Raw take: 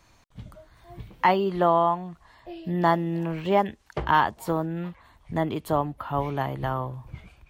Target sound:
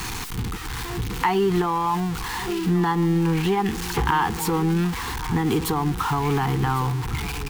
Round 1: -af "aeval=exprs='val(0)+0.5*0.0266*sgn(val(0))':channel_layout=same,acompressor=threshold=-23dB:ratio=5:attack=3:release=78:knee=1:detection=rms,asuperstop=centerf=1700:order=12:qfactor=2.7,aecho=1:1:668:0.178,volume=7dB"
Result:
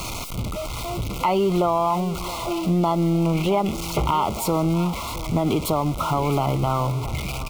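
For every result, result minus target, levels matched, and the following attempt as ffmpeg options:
echo 436 ms early; 2,000 Hz band −6.5 dB
-af "aeval=exprs='val(0)+0.5*0.0266*sgn(val(0))':channel_layout=same,acompressor=threshold=-23dB:ratio=5:attack=3:release=78:knee=1:detection=rms,asuperstop=centerf=1700:order=12:qfactor=2.7,aecho=1:1:1104:0.178,volume=7dB"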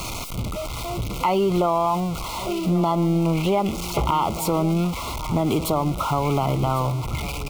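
2,000 Hz band −6.5 dB
-af "aeval=exprs='val(0)+0.5*0.0266*sgn(val(0))':channel_layout=same,acompressor=threshold=-23dB:ratio=5:attack=3:release=78:knee=1:detection=rms,asuperstop=centerf=600:order=12:qfactor=2.7,aecho=1:1:1104:0.178,volume=7dB"

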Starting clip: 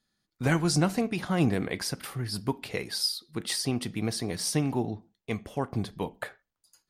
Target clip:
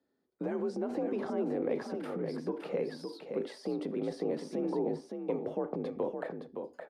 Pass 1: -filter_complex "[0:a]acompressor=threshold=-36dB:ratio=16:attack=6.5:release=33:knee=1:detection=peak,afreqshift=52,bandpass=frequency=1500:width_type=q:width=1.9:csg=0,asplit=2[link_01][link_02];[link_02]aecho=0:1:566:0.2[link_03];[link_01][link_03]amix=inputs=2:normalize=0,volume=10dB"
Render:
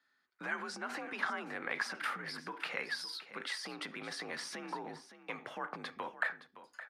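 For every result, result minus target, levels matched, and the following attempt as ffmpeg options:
2,000 Hz band +18.5 dB; echo-to-direct −7.5 dB
-filter_complex "[0:a]acompressor=threshold=-36dB:ratio=16:attack=6.5:release=33:knee=1:detection=peak,afreqshift=52,bandpass=frequency=460:width_type=q:width=1.9:csg=0,asplit=2[link_01][link_02];[link_02]aecho=0:1:566:0.2[link_03];[link_01][link_03]amix=inputs=2:normalize=0,volume=10dB"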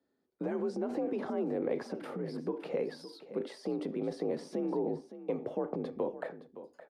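echo-to-direct −7.5 dB
-filter_complex "[0:a]acompressor=threshold=-36dB:ratio=16:attack=6.5:release=33:knee=1:detection=peak,afreqshift=52,bandpass=frequency=460:width_type=q:width=1.9:csg=0,asplit=2[link_01][link_02];[link_02]aecho=0:1:566:0.473[link_03];[link_01][link_03]amix=inputs=2:normalize=0,volume=10dB"

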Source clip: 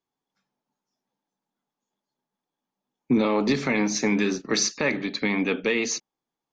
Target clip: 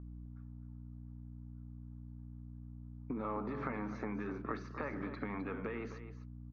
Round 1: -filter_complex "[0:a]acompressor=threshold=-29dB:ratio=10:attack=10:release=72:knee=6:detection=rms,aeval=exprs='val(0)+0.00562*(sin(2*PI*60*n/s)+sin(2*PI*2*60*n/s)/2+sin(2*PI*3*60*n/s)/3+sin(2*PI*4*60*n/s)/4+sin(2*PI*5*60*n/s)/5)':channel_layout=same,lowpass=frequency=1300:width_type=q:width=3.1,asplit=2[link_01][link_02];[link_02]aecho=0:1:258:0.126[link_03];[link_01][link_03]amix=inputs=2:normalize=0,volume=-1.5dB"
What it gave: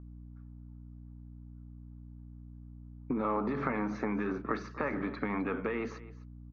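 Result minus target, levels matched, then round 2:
downward compressor: peak gain reduction −7.5 dB; echo-to-direct −6.5 dB
-filter_complex "[0:a]acompressor=threshold=-37.5dB:ratio=10:attack=10:release=72:knee=6:detection=rms,aeval=exprs='val(0)+0.00562*(sin(2*PI*60*n/s)+sin(2*PI*2*60*n/s)/2+sin(2*PI*3*60*n/s)/3+sin(2*PI*4*60*n/s)/4+sin(2*PI*5*60*n/s)/5)':channel_layout=same,lowpass=frequency=1300:width_type=q:width=3.1,asplit=2[link_01][link_02];[link_02]aecho=0:1:258:0.266[link_03];[link_01][link_03]amix=inputs=2:normalize=0,volume=-1.5dB"

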